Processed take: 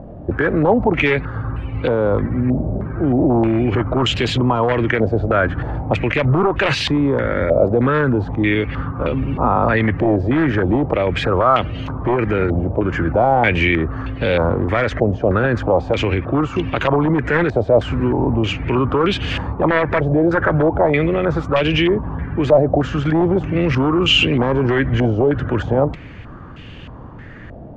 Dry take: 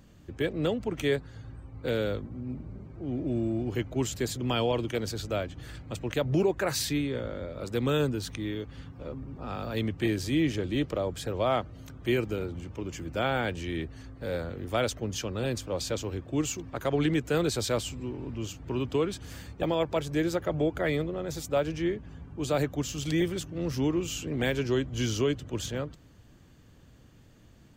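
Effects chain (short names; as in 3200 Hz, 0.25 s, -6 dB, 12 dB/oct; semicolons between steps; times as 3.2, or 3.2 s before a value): one-sided fold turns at -22.5 dBFS; maximiser +28 dB; stepped low-pass 3.2 Hz 670–2800 Hz; gain -8.5 dB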